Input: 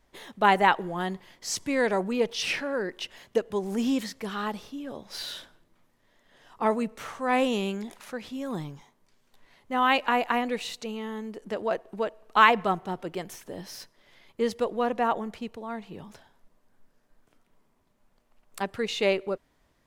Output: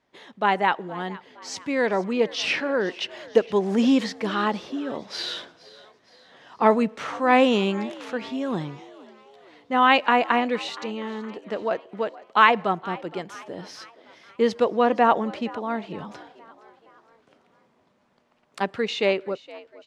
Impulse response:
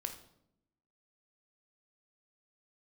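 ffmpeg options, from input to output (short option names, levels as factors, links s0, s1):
-filter_complex "[0:a]highpass=140,lowpass=5000,dynaudnorm=f=500:g=7:m=3.16,asplit=5[s0][s1][s2][s3][s4];[s1]adelay=467,afreqshift=73,volume=0.1[s5];[s2]adelay=934,afreqshift=146,volume=0.0501[s6];[s3]adelay=1401,afreqshift=219,volume=0.0251[s7];[s4]adelay=1868,afreqshift=292,volume=0.0124[s8];[s0][s5][s6][s7][s8]amix=inputs=5:normalize=0,volume=0.891"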